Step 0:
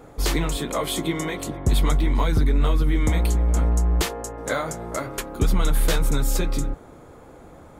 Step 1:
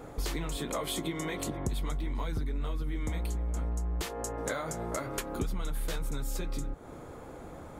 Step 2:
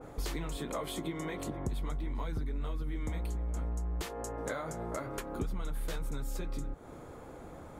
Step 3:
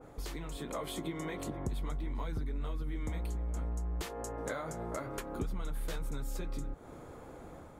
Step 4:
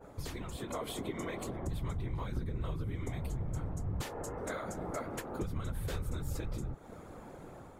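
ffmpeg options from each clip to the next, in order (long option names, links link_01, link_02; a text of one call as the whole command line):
ffmpeg -i in.wav -af "acompressor=threshold=-31dB:ratio=6" out.wav
ffmpeg -i in.wav -af "adynamicequalizer=threshold=0.00251:dfrequency=2200:dqfactor=0.7:tfrequency=2200:tqfactor=0.7:attack=5:release=100:ratio=0.375:range=3:mode=cutabove:tftype=highshelf,volume=-2.5dB" out.wav
ffmpeg -i in.wav -af "dynaudnorm=framelen=420:gausssize=3:maxgain=4dB,volume=-5dB" out.wav
ffmpeg -i in.wav -af "afftfilt=real='hypot(re,im)*cos(2*PI*random(0))':imag='hypot(re,im)*sin(2*PI*random(1))':win_size=512:overlap=0.75,volume=6dB" out.wav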